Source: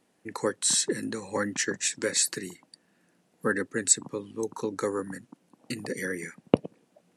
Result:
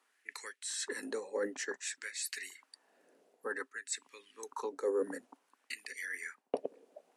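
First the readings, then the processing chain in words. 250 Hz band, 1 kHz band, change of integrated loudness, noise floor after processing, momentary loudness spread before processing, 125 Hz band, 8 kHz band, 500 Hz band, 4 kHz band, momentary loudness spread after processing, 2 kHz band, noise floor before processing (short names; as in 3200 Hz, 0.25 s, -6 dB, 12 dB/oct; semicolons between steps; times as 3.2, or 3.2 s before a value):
-15.0 dB, -9.0 dB, -11.5 dB, -78 dBFS, 15 LU, under -25 dB, -15.0 dB, -7.0 dB, -12.0 dB, 11 LU, -7.0 dB, -69 dBFS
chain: LFO high-pass sine 0.55 Hz 520–2300 Hz; reverse; compressor 6:1, threshold -33 dBFS, peak gain reduction 17 dB; reverse; low shelf 220 Hz +3 dB; small resonant body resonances 270/400 Hz, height 12 dB, ringing for 45 ms; gain -4.5 dB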